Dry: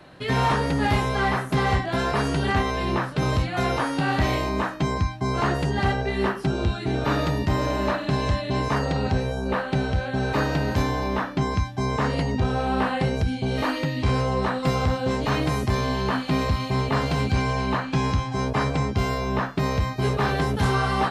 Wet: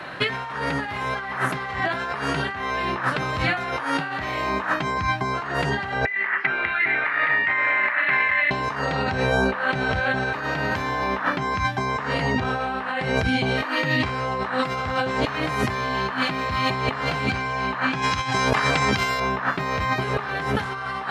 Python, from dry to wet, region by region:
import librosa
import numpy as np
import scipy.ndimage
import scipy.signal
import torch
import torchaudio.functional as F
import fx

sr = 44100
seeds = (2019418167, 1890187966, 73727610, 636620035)

y = fx.chain(x, sr, fx.ladder_lowpass(hz=2200.0, resonance_pct=75),
    fx.tilt_eq(slope=4.0),
    fx.transformer_sat(knee_hz=660.0), at=(6.05, 8.51))
y = fx.chain(y, sr, fx.over_compress(threshold_db=-30.0, ratio=-1.0),
    fx.high_shelf(hz=2600.0, db=12.0), at=(18.02, 19.2))
y = scipy.signal.sosfilt(scipy.signal.butter(2, 76.0, 'highpass', fs=sr, output='sos'), y)
y = fx.peak_eq(y, sr, hz=1600.0, db=13.0, octaves=2.4)
y = fx.over_compress(y, sr, threshold_db=-25.0, ratio=-1.0)